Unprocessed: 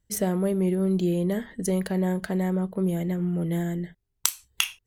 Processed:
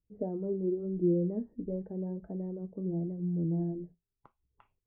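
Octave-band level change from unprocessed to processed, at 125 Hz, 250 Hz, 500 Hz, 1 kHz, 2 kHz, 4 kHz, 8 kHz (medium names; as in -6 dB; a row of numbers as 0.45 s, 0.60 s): -7.5 dB, -7.5 dB, -6.5 dB, -16.5 dB, under -35 dB, under -40 dB, under -40 dB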